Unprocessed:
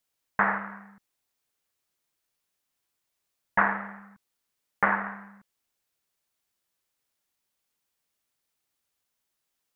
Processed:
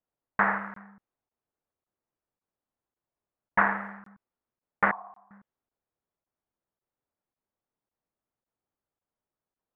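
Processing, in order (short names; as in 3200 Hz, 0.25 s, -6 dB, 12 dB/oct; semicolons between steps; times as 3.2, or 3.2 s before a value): low-pass opened by the level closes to 950 Hz, open at -25.5 dBFS; 4.91–5.31 vocal tract filter a; crackling interface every 0.55 s, samples 1024, zero, from 0.74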